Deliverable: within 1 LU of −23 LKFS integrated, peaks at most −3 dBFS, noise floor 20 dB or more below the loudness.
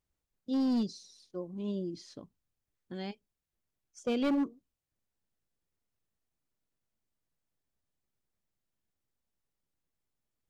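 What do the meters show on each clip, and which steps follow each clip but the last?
share of clipped samples 1.0%; peaks flattened at −25.5 dBFS; integrated loudness −34.0 LKFS; sample peak −25.5 dBFS; target loudness −23.0 LKFS
→ clipped peaks rebuilt −25.5 dBFS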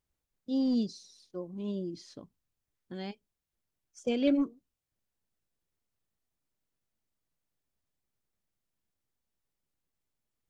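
share of clipped samples 0.0%; integrated loudness −33.0 LKFS; sample peak −16.5 dBFS; target loudness −23.0 LKFS
→ level +10 dB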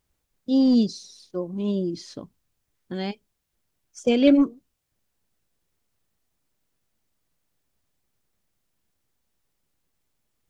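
integrated loudness −23.0 LKFS; sample peak −6.5 dBFS; background noise floor −77 dBFS

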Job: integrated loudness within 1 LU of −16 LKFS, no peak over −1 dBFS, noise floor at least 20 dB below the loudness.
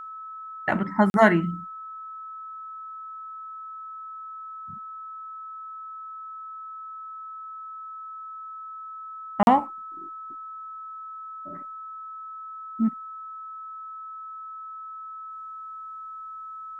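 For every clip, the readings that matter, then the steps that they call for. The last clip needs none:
number of dropouts 2; longest dropout 41 ms; interfering tone 1,300 Hz; level of the tone −36 dBFS; integrated loudness −30.5 LKFS; sample peak −4.5 dBFS; target loudness −16.0 LKFS
→ repair the gap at 0:01.10/0:09.43, 41 ms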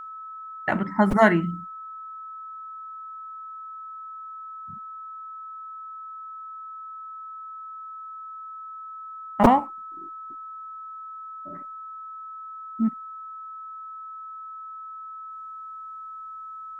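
number of dropouts 0; interfering tone 1,300 Hz; level of the tone −36 dBFS
→ notch filter 1,300 Hz, Q 30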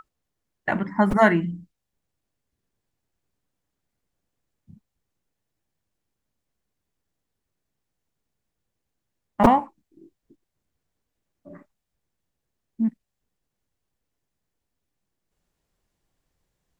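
interfering tone none found; integrated loudness −22.0 LKFS; sample peak −2.0 dBFS; target loudness −16.0 LKFS
→ level +6 dB
brickwall limiter −1 dBFS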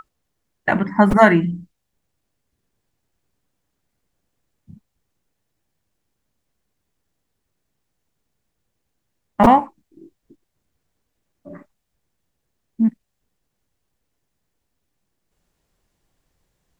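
integrated loudness −16.5 LKFS; sample peak −1.0 dBFS; background noise floor −76 dBFS

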